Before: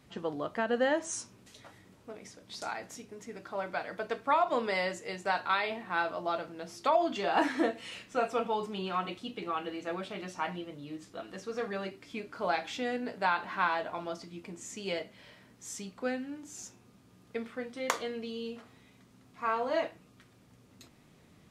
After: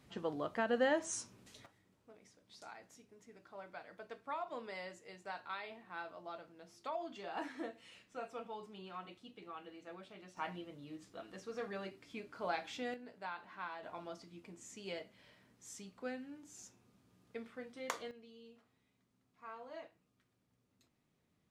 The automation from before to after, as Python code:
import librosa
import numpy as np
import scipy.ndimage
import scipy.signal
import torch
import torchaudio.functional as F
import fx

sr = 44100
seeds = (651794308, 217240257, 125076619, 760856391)

y = fx.gain(x, sr, db=fx.steps((0.0, -4.0), (1.66, -15.0), (10.37, -7.5), (12.94, -16.0), (13.83, -9.5), (18.11, -19.0)))